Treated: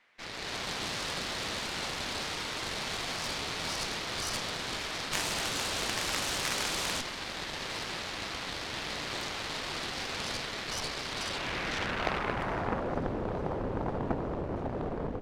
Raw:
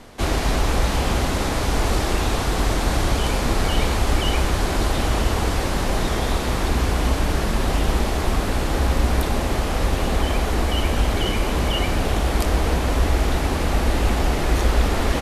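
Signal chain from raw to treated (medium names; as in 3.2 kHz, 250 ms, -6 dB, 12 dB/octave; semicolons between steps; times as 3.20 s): time-frequency box 5.13–7.01 s, 330–8800 Hz +7 dB; level rider gain up to 11.5 dB; band-pass sweep 2.1 kHz -> 210 Hz, 11.10–13.06 s; Chebyshev shaper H 3 -8 dB, 7 -35 dB, 8 -18 dB, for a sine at -12 dBFS; on a send: thinning echo 436 ms, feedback 70%, level -21.5 dB; on the sum: trim -1 dB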